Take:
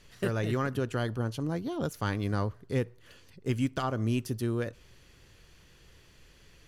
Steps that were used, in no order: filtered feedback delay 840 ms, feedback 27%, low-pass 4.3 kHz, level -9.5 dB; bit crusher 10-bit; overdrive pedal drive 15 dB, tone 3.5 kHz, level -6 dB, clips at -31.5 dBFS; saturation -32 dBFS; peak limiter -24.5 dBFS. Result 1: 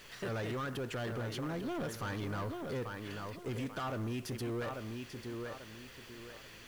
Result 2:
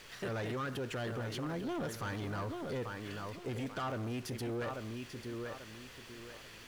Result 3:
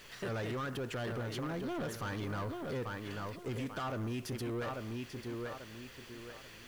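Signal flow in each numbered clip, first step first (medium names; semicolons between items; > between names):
peak limiter > filtered feedback delay > overdrive pedal > saturation > bit crusher; peak limiter > filtered feedback delay > saturation > bit crusher > overdrive pedal; filtered feedback delay > peak limiter > overdrive pedal > bit crusher > saturation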